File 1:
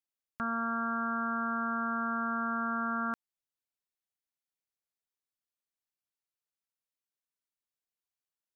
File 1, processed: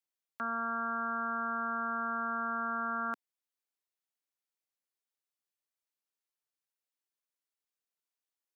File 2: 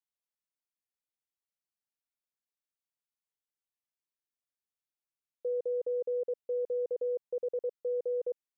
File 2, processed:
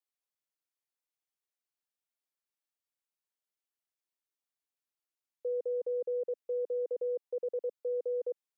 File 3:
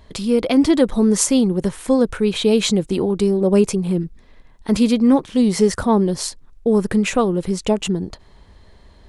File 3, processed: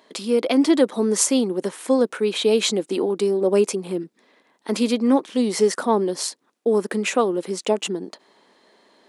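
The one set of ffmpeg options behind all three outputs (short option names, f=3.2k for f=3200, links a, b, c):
-af "highpass=f=260:w=0.5412,highpass=f=260:w=1.3066,volume=-1dB"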